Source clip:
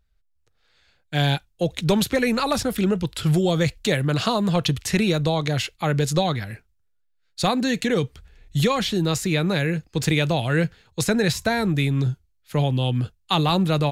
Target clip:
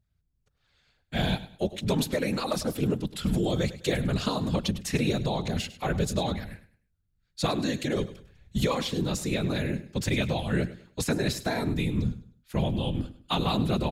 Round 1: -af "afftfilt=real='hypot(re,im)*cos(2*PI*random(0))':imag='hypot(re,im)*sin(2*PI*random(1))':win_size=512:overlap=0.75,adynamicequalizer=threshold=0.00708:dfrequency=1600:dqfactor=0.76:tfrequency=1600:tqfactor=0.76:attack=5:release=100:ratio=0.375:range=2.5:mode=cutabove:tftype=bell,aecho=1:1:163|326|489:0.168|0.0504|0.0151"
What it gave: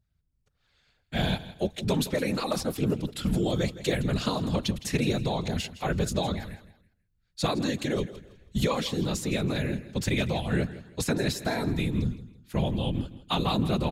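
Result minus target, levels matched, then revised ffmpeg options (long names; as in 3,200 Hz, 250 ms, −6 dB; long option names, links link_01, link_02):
echo 61 ms late
-af "afftfilt=real='hypot(re,im)*cos(2*PI*random(0))':imag='hypot(re,im)*sin(2*PI*random(1))':win_size=512:overlap=0.75,adynamicequalizer=threshold=0.00708:dfrequency=1600:dqfactor=0.76:tfrequency=1600:tqfactor=0.76:attack=5:release=100:ratio=0.375:range=2.5:mode=cutabove:tftype=bell,aecho=1:1:102|204|306:0.168|0.0504|0.0151"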